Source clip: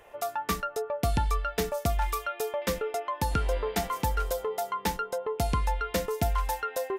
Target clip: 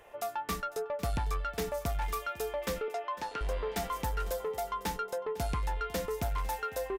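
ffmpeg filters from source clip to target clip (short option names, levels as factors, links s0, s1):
-filter_complex "[0:a]asoftclip=type=tanh:threshold=0.0562,asettb=1/sr,asplit=3[s0][s1][s2];[s0]atrim=end=2.884[s3];[s1]atrim=start=2.88:end=3.41,asetpts=PTS-STARTPTS,afade=t=in:d=0.004:c=qsin,afade=t=out:st=0.526:d=0.004:c=qsin,highpass=390,lowpass=5300[s4];[s2]atrim=start=3.406[s5];[s3][s4]acrossfade=d=0.004:c1=hsin:c2=qsin[s6];[s6][s5]acrossfade=d=0.004:c1=qsin:c2=hsin,aecho=1:1:502:0.126,volume=0.794"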